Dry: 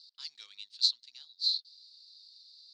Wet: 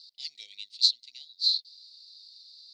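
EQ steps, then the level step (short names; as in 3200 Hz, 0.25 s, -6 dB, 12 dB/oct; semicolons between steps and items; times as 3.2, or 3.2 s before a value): brick-wall FIR band-stop 780–1900 Hz; +4.5 dB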